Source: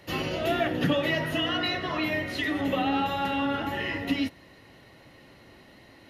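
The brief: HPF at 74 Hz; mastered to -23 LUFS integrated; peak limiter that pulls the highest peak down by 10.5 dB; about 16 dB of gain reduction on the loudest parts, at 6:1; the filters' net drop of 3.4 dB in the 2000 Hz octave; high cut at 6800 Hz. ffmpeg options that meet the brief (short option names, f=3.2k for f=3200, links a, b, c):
-af "highpass=74,lowpass=6.8k,equalizer=f=2k:t=o:g=-4,acompressor=threshold=-39dB:ratio=6,volume=23.5dB,alimiter=limit=-14dB:level=0:latency=1"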